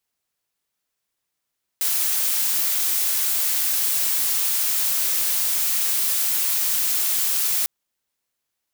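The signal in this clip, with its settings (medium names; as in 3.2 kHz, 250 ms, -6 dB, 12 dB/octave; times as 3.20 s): noise blue, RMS -21.5 dBFS 5.85 s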